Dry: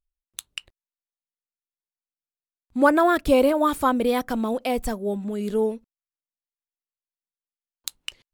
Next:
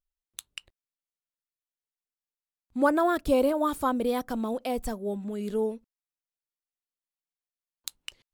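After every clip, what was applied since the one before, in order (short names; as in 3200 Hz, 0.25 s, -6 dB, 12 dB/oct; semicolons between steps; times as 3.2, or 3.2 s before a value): dynamic EQ 2200 Hz, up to -5 dB, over -40 dBFS, Q 1.3; gain -5 dB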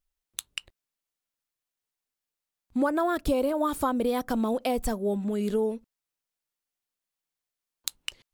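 compressor 6:1, threshold -28 dBFS, peak gain reduction 10.5 dB; gain +5.5 dB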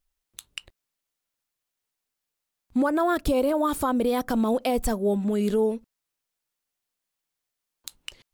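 limiter -19 dBFS, peak gain reduction 11 dB; gain +4 dB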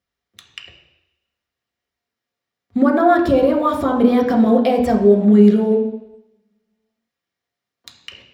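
reverb RT60 0.85 s, pre-delay 3 ms, DRR -1 dB; gain -3 dB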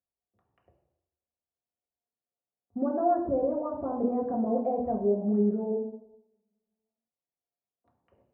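ladder low-pass 920 Hz, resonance 40%; gain -7.5 dB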